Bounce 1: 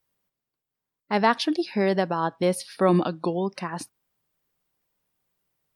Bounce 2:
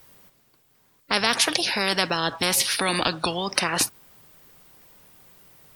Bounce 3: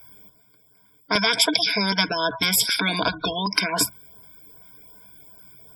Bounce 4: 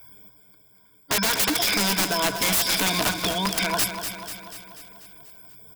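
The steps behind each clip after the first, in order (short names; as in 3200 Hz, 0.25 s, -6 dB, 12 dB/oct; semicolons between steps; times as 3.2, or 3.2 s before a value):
spectral compressor 4:1; gain +5.5 dB
ripple EQ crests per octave 1.7, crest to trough 16 dB; spectral gate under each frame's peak -20 dB strong; LFO notch saw up 2.6 Hz 270–3500 Hz
wrapped overs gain 15.5 dB; feedback echo 0.244 s, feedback 58%, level -8.5 dB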